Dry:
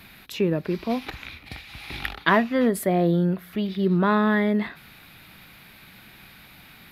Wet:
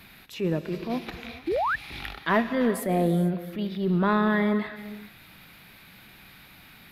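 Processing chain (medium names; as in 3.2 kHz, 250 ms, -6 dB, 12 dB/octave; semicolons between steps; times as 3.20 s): gated-style reverb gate 480 ms flat, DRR 10.5 dB; transient shaper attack -7 dB, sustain -2 dB; painted sound rise, 1.47–1.76 s, 300–1900 Hz -23 dBFS; trim -2 dB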